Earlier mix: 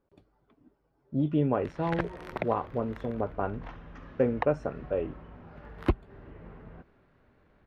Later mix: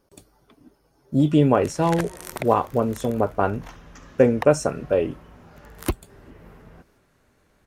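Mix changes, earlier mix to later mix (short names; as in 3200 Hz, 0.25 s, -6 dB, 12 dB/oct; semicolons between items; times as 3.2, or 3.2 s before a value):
speech +8.5 dB; master: remove air absorption 360 m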